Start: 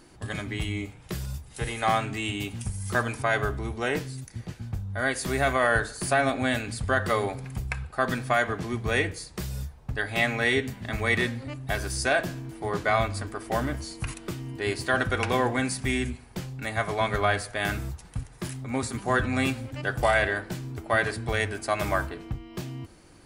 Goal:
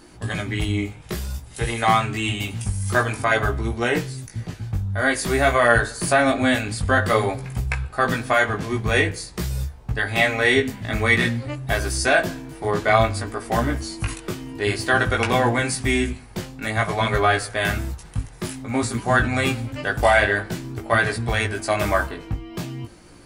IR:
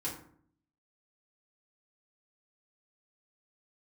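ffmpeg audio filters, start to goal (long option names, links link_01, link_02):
-af "flanger=delay=17:depth=2.4:speed=0.52,volume=9dB"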